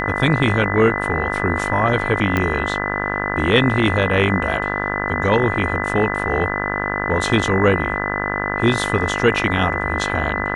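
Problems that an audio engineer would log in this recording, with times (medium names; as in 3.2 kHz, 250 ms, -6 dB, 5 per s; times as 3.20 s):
buzz 50 Hz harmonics 36 -24 dBFS
whine 2 kHz -25 dBFS
2.37 s: pop -7 dBFS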